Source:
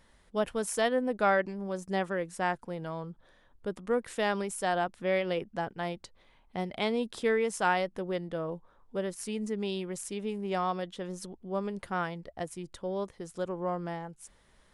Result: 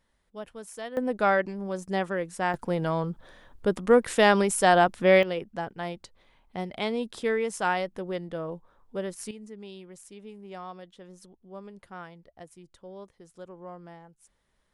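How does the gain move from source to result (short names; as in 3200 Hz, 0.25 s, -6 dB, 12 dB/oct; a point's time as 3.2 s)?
-10 dB
from 0.97 s +2.5 dB
from 2.54 s +10 dB
from 5.23 s +0.5 dB
from 9.31 s -10 dB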